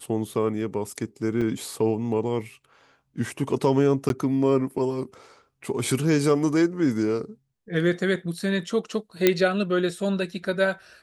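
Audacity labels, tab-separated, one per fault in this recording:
1.410000	1.420000	drop-out 5.5 ms
4.090000	4.100000	drop-out 12 ms
9.270000	9.270000	click −3 dBFS

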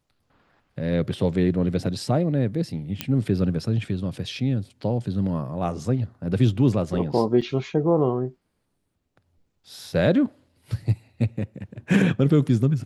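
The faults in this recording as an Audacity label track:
3.010000	3.010000	click −9 dBFS
7.410000	7.420000	drop-out 6.3 ms

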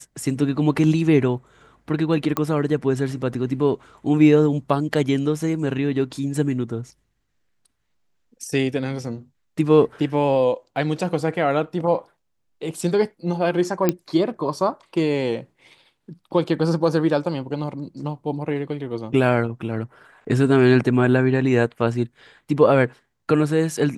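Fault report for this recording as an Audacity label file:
2.370000	2.370000	click −9 dBFS
13.890000	13.890000	click −5 dBFS

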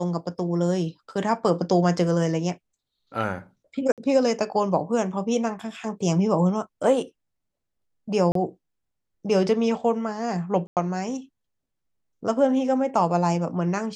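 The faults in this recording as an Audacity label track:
3.920000	3.980000	drop-out 57 ms
8.320000	8.350000	drop-out 33 ms
10.670000	10.770000	drop-out 98 ms

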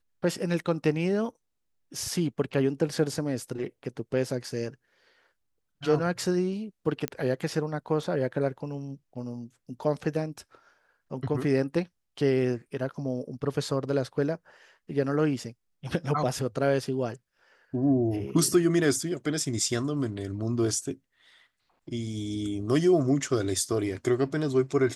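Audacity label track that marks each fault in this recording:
7.080000	7.080000	click −14 dBFS

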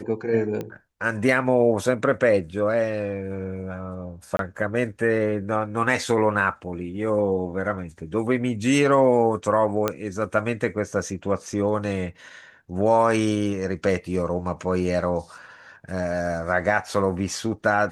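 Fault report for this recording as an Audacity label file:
0.610000	0.610000	click −18 dBFS
4.370000	4.390000	drop-out 22 ms
9.880000	9.880000	click −8 dBFS

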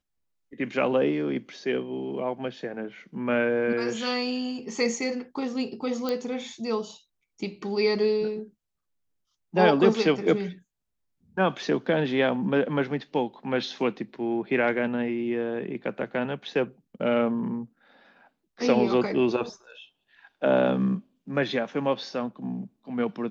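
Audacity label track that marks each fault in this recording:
6.090000	6.090000	click −15 dBFS

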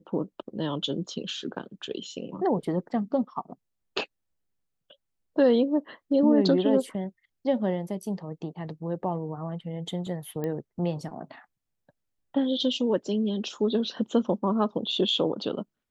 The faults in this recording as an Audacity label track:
10.440000	10.440000	click −20 dBFS

